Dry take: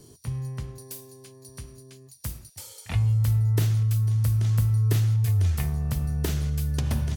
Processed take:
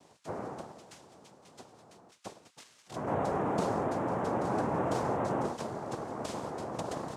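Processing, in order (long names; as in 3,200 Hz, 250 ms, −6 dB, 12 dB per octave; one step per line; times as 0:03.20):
0:02.63–0:03.07: amplitude modulation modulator 120 Hz, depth 90%
cochlear-implant simulation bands 2
level −8 dB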